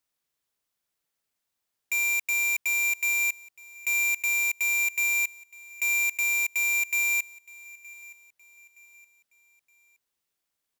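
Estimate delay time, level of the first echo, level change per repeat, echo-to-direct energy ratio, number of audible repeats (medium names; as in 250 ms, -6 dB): 919 ms, -22.5 dB, -8.0 dB, -21.5 dB, 2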